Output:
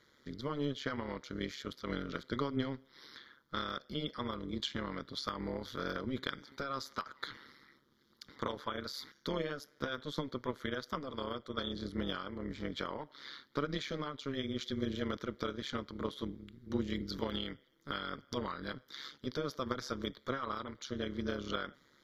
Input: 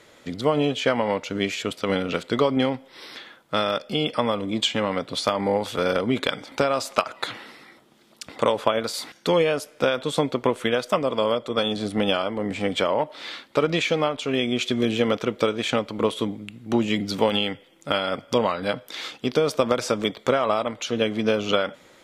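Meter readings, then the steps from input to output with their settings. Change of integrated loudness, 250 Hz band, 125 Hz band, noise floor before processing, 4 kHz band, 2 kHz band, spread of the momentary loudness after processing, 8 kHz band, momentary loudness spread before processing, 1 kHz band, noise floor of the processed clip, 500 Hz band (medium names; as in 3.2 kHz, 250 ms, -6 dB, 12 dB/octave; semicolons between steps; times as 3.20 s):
-15.5 dB, -13.0 dB, -11.0 dB, -54 dBFS, -14.5 dB, -14.0 dB, 7 LU, -17.5 dB, 7 LU, -15.0 dB, -69 dBFS, -18.5 dB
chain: static phaser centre 2.6 kHz, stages 6; AM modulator 140 Hz, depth 70%; trim -7.5 dB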